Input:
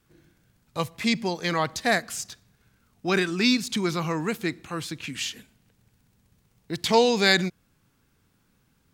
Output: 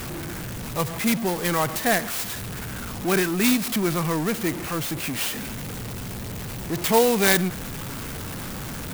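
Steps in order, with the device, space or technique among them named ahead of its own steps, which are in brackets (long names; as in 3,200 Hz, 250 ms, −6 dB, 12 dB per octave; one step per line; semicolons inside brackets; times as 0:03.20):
early CD player with a faulty converter (converter with a step at zero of −26.5 dBFS; converter with an unsteady clock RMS 0.058 ms)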